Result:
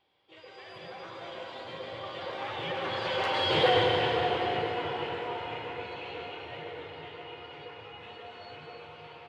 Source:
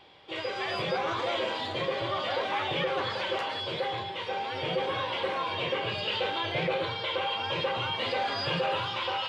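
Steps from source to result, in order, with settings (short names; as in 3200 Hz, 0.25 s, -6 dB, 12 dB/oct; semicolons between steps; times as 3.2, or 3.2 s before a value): Doppler pass-by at 3.62, 17 m/s, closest 3.4 m; pitch shift -1 st; reverb RT60 4.9 s, pre-delay 93 ms, DRR -0.5 dB; gain +7.5 dB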